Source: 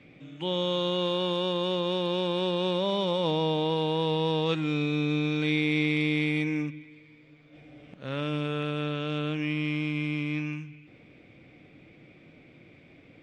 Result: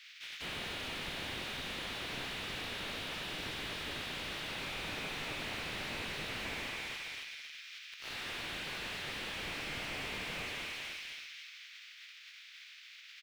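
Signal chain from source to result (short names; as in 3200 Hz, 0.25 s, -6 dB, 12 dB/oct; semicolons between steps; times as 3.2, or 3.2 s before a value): spectral contrast lowered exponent 0.22; Bessel high-pass 2900 Hz, order 8; limiter -21.5 dBFS, peak gain reduction 6.5 dB; air absorption 250 m; doubler 19 ms -11.5 dB; feedback echo 0.27 s, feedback 50%, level -7 dB; slew limiter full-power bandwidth 6.7 Hz; gain +11.5 dB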